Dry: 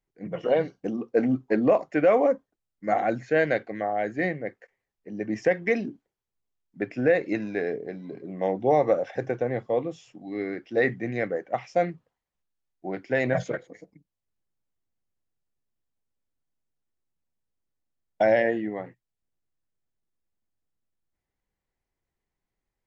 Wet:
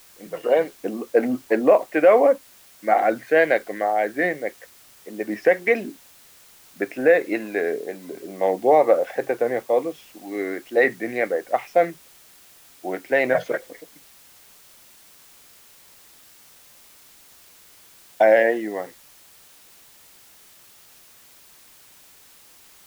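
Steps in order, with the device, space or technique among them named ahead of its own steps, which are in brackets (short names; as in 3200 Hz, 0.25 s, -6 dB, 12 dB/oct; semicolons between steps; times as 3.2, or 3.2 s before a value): dictaphone (BPF 350–3700 Hz; AGC gain up to 5 dB; wow and flutter; white noise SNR 27 dB); gain +1.5 dB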